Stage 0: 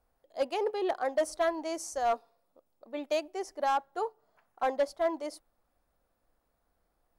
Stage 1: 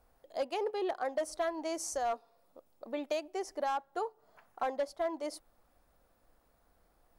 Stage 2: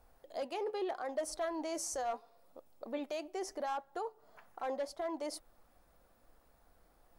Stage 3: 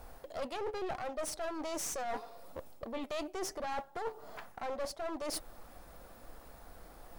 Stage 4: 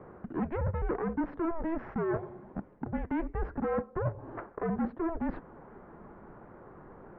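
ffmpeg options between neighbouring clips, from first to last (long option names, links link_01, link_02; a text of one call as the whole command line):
ffmpeg -i in.wav -af "acompressor=threshold=-43dB:ratio=2.5,volume=6.5dB" out.wav
ffmpeg -i in.wav -af "alimiter=level_in=9dB:limit=-24dB:level=0:latency=1:release=12,volume=-9dB,flanger=delay=1.1:depth=4.9:regen=83:speed=0.76:shape=sinusoidal,volume=6.5dB" out.wav
ffmpeg -i in.wav -af "areverse,acompressor=threshold=-46dB:ratio=12,areverse,aeval=exprs='clip(val(0),-1,0.00158)':channel_layout=same,volume=14dB" out.wav
ffmpeg -i in.wav -af "highpass=frequency=280:width_type=q:width=0.5412,highpass=frequency=280:width_type=q:width=1.307,lowpass=frequency=2100:width_type=q:width=0.5176,lowpass=frequency=2100:width_type=q:width=0.7071,lowpass=frequency=2100:width_type=q:width=1.932,afreqshift=-330,volume=7.5dB" out.wav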